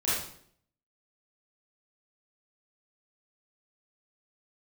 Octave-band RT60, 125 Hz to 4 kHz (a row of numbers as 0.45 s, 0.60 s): 0.75 s, 0.75 s, 0.65 s, 0.55 s, 0.55 s, 0.55 s